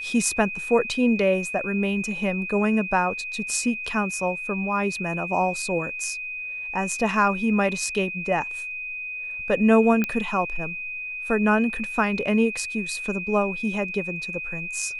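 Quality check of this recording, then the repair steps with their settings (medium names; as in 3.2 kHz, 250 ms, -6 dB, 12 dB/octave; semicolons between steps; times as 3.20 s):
whine 2.5 kHz -30 dBFS
10.04 s: pop -11 dBFS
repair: de-click; band-stop 2.5 kHz, Q 30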